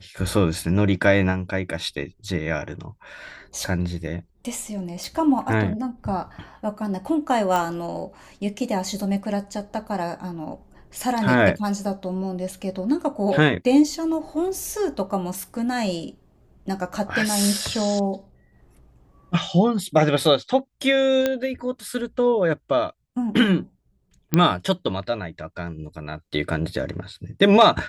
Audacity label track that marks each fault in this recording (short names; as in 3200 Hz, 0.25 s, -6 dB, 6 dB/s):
5.040000	5.040000	pop
7.560000	7.560000	pop
21.260000	21.260000	pop -8 dBFS
24.340000	24.340000	pop -5 dBFS